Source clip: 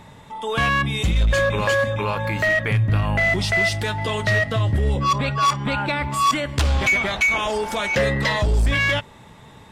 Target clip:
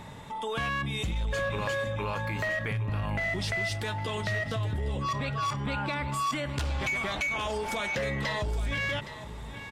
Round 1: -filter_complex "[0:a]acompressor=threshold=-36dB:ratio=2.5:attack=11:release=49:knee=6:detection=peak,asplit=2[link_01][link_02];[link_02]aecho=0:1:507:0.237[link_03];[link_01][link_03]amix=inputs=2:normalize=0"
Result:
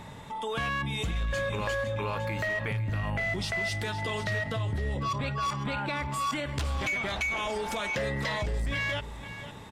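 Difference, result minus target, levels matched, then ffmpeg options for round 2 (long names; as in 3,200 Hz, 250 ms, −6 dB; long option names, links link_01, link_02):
echo 309 ms early
-filter_complex "[0:a]acompressor=threshold=-36dB:ratio=2.5:attack=11:release=49:knee=6:detection=peak,asplit=2[link_01][link_02];[link_02]aecho=0:1:816:0.237[link_03];[link_01][link_03]amix=inputs=2:normalize=0"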